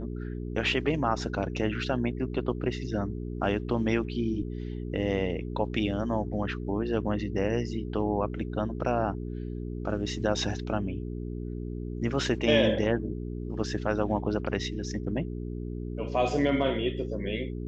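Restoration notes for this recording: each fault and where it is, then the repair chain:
mains hum 60 Hz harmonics 7 −35 dBFS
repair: hum removal 60 Hz, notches 7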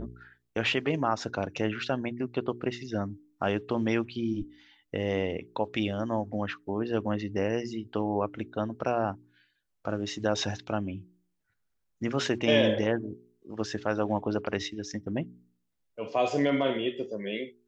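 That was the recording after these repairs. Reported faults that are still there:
none of them is left

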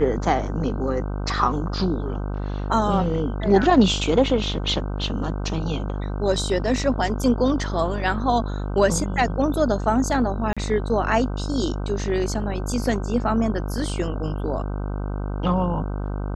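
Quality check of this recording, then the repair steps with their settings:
mains buzz 50 Hz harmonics 31 −27 dBFS
0:10.53–0:10.57: drop-out 36 ms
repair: hum removal 50 Hz, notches 31
repair the gap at 0:10.53, 36 ms

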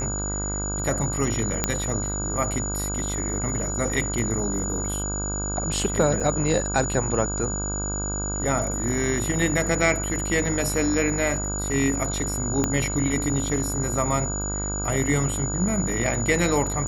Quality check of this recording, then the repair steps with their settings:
mains buzz 50 Hz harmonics 32 −30 dBFS
whistle 6,900 Hz −29 dBFS
0:01.64: click −5 dBFS
0:06.20–0:06.21: drop-out 5.1 ms
0:12.64: click −9 dBFS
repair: click removal
hum removal 50 Hz, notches 32
notch filter 6,900 Hz, Q 30
repair the gap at 0:06.20, 5.1 ms

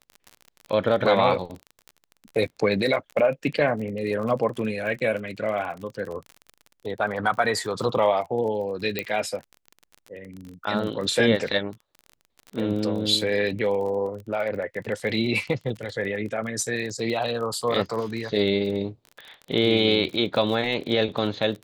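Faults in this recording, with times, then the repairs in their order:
surface crackle 34 per second −32 dBFS
0:08.99: click −11 dBFS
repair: click removal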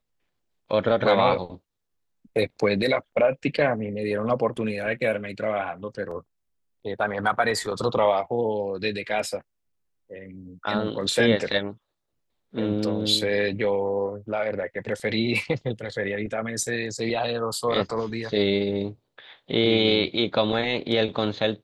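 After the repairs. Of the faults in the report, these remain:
none of them is left

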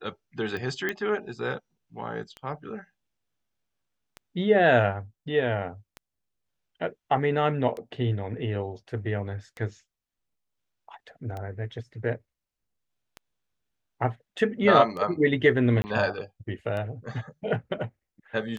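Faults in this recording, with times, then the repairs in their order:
scratch tick 33 1/3 rpm −23 dBFS
0:00.89: click −15 dBFS
0:15.82–0:15.84: drop-out 20 ms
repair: click removal
repair the gap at 0:15.82, 20 ms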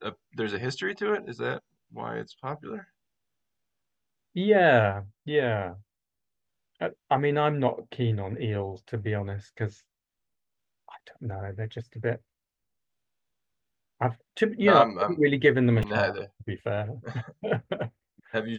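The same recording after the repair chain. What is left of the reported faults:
none of them is left

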